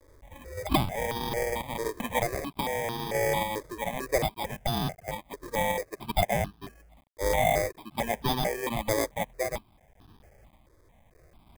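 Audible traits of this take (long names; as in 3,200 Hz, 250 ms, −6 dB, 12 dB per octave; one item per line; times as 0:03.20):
a quantiser's noise floor 10 bits, dither none
sample-and-hold tremolo
aliases and images of a low sample rate 1,400 Hz, jitter 0%
notches that jump at a steady rate 4.5 Hz 760–2,100 Hz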